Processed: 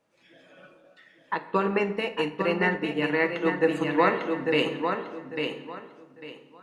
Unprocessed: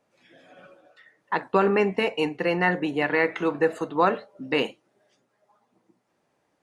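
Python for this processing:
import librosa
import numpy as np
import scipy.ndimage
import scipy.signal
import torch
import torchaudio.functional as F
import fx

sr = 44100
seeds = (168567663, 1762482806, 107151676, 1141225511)

y = fx.peak_eq(x, sr, hz=3000.0, db=2.0, octaves=0.77)
y = fx.notch(y, sr, hz=750.0, q=12.0)
y = fx.echo_feedback(y, sr, ms=849, feedback_pct=24, wet_db=-5.5)
y = fx.room_shoebox(y, sr, seeds[0], volume_m3=650.0, walls='mixed', distance_m=0.67)
y = fx.upward_expand(y, sr, threshold_db=-30.0, expansion=1.5, at=(1.34, 3.67))
y = y * 10.0 ** (-2.0 / 20.0)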